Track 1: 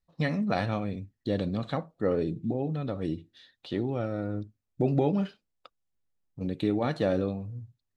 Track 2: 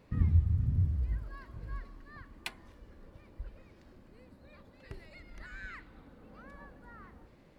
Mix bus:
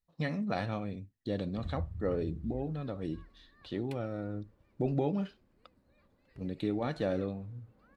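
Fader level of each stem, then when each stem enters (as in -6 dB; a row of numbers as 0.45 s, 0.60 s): -5.5 dB, -12.5 dB; 0.00 s, 1.45 s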